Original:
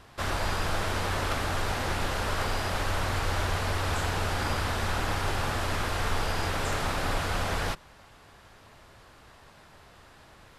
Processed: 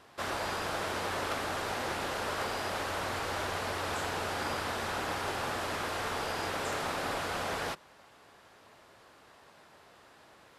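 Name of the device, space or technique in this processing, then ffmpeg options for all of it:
filter by subtraction: -filter_complex "[0:a]asplit=2[link_01][link_02];[link_02]lowpass=400,volume=-1[link_03];[link_01][link_03]amix=inputs=2:normalize=0,volume=-4dB"

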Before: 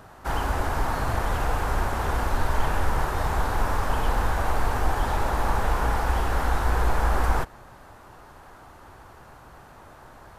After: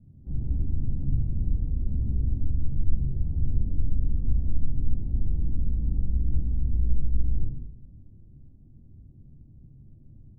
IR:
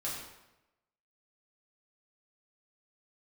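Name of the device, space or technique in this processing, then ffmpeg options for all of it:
club heard from the street: -filter_complex "[0:a]alimiter=limit=-16.5dB:level=0:latency=1:release=93,lowpass=frequency=230:width=0.5412,lowpass=frequency=230:width=1.3066[link_01];[1:a]atrim=start_sample=2205[link_02];[link_01][link_02]afir=irnorm=-1:irlink=0"

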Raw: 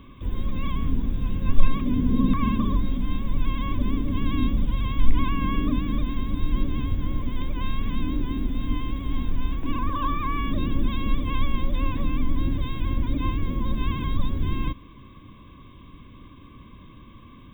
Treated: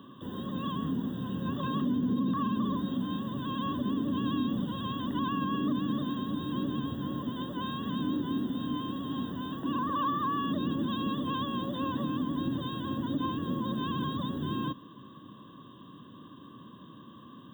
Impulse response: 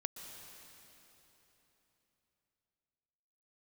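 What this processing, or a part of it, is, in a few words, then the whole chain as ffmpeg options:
PA system with an anti-feedback notch: -af "highpass=frequency=140:width=0.5412,highpass=frequency=140:width=1.3066,asuperstop=centerf=2300:order=8:qfactor=2.6,alimiter=limit=-22dB:level=0:latency=1:release=50"

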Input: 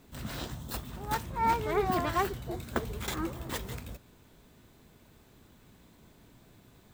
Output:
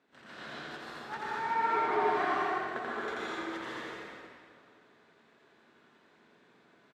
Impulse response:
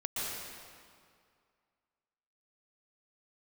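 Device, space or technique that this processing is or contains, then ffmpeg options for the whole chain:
station announcement: -filter_complex "[0:a]highpass=330,lowpass=3900,equalizer=frequency=1600:width_type=o:width=0.58:gain=7,aecho=1:1:84.55|154.5:0.794|0.316[link_01];[1:a]atrim=start_sample=2205[link_02];[link_01][link_02]afir=irnorm=-1:irlink=0,volume=-8dB"

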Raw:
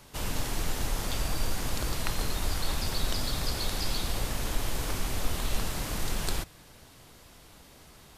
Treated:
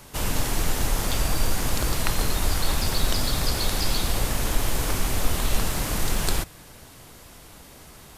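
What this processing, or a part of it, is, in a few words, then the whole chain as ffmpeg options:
exciter from parts: -filter_complex "[0:a]asplit=2[link_01][link_02];[link_02]highpass=2200,asoftclip=type=tanh:threshold=-37dB,highpass=4600,volume=-8dB[link_03];[link_01][link_03]amix=inputs=2:normalize=0,volume=6.5dB"

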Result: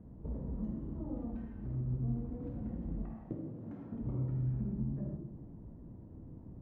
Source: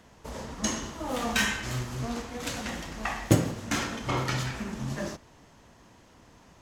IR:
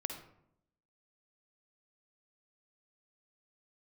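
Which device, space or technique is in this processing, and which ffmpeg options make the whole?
television next door: -filter_complex "[0:a]asettb=1/sr,asplit=3[link_01][link_02][link_03];[link_01]atrim=end=3.024[link_04];[link_02]atrim=start=3.02:end=3.92,asetpts=PTS-STARTPTS,afade=type=in:duration=0.004:curve=qsin,afade=type=out:start_time=0.896:duration=0.004:curve=qsin,highpass=frequency=530:poles=1[link_05];[link_03]atrim=start=3.916[link_06];[link_04][link_05]acrossfade=duration=0.004:curve1=hsin:curve2=qsin[link_07];[link_07][link_06]acrossfade=duration=0.004:curve1=qsin:curve2=hsin,acompressor=threshold=-41dB:ratio=6,lowpass=250[link_08];[1:a]atrim=start_sample=2205[link_09];[link_08][link_09]afir=irnorm=-1:irlink=0,volume=8.5dB"

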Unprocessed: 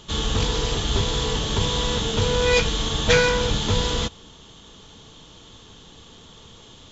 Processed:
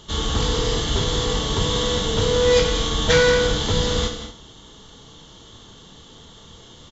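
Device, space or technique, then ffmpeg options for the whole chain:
slapback doubling: -filter_complex "[0:a]bandreject=frequency=2500:width=6.8,asplit=3[link_01][link_02][link_03];[link_02]adelay=26,volume=-9dB[link_04];[link_03]adelay=93,volume=-12dB[link_05];[link_01][link_04][link_05]amix=inputs=3:normalize=0,aecho=1:1:53|183|229:0.316|0.282|0.188"

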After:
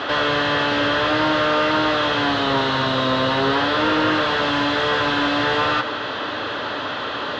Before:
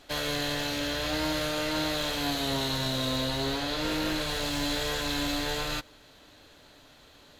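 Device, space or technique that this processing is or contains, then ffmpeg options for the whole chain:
overdrive pedal into a guitar cabinet: -filter_complex "[0:a]asplit=2[link_01][link_02];[link_02]highpass=frequency=720:poles=1,volume=36dB,asoftclip=type=tanh:threshold=-17dB[link_03];[link_01][link_03]amix=inputs=2:normalize=0,lowpass=frequency=2600:poles=1,volume=-6dB,highpass=83,equalizer=frequency=110:width_type=q:width=4:gain=7,equalizer=frequency=160:width_type=q:width=4:gain=-4,equalizer=frequency=710:width_type=q:width=4:gain=-4,equalizer=frequency=1200:width_type=q:width=4:gain=4,equalizer=frequency=2300:width_type=q:width=4:gain=-9,equalizer=frequency=4100:width_type=q:width=4:gain=-7,lowpass=frequency=4100:width=0.5412,lowpass=frequency=4100:width=1.3066,volume=7.5dB"

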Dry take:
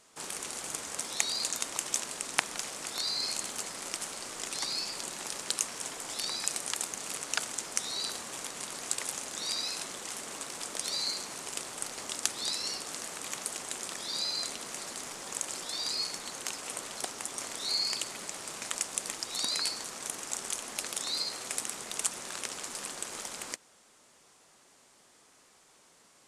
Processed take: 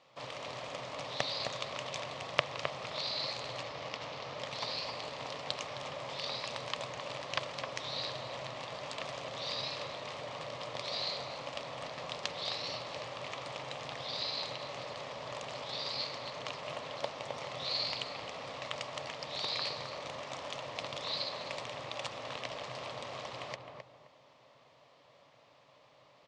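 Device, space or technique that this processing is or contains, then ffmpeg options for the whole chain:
ring modulator pedal into a guitar cabinet: -filter_complex "[0:a]asettb=1/sr,asplit=3[link_01][link_02][link_03];[link_01]atrim=end=3.634[link_04];[link_02]atrim=start=3.63:end=4.39,asetpts=PTS-STARTPTS,afade=type=in:duration=0.004:curve=qsin,afade=type=out:start_time=0.756:duration=0.004:curve=qsin,lowpass=frequency=6800:width=0.5412,lowpass=frequency=6800:width=1.3066[link_05];[link_03]atrim=start=4.386[link_06];[link_04][link_05]acrossfade=duration=0.004:curve1=hsin:curve2=qsin[link_07];[link_07][link_06]acrossfade=duration=0.004:curve1=qsin:curve2=hsin,aeval=exprs='val(0)*sgn(sin(2*PI*120*n/s))':channel_layout=same,highpass=110,equalizer=frequency=130:width_type=q:width=4:gain=10,equalizer=frequency=200:width_type=q:width=4:gain=-6,equalizer=frequency=350:width_type=q:width=4:gain=-9,equalizer=frequency=580:width_type=q:width=4:gain=9,equalizer=frequency=1100:width_type=q:width=4:gain=4,equalizer=frequency=1500:width_type=q:width=4:gain=-9,lowpass=frequency=4100:width=0.5412,lowpass=frequency=4100:width=1.3066,asplit=2[link_08][link_09];[link_09]adelay=262,lowpass=frequency=1200:poles=1,volume=-3dB,asplit=2[link_10][link_11];[link_11]adelay=262,lowpass=frequency=1200:poles=1,volume=0.32,asplit=2[link_12][link_13];[link_13]adelay=262,lowpass=frequency=1200:poles=1,volume=0.32,asplit=2[link_14][link_15];[link_15]adelay=262,lowpass=frequency=1200:poles=1,volume=0.32[link_16];[link_08][link_10][link_12][link_14][link_16]amix=inputs=5:normalize=0"

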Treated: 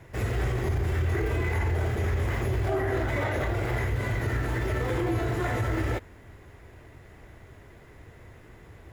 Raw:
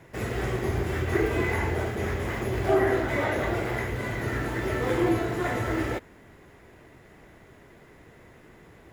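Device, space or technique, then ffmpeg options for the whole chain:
car stereo with a boomy subwoofer: -af "lowshelf=frequency=130:width_type=q:width=1.5:gain=7,alimiter=limit=-19.5dB:level=0:latency=1:release=27"

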